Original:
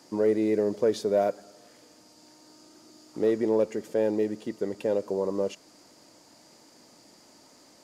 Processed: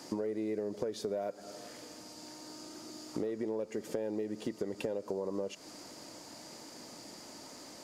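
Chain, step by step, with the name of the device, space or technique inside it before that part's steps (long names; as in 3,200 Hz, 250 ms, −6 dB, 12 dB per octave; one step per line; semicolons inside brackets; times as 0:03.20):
serial compression, peaks first (downward compressor 10 to 1, threshold −33 dBFS, peak gain reduction 14.5 dB; downward compressor 2 to 1, threshold −42 dBFS, peak gain reduction 6.5 dB)
level +6 dB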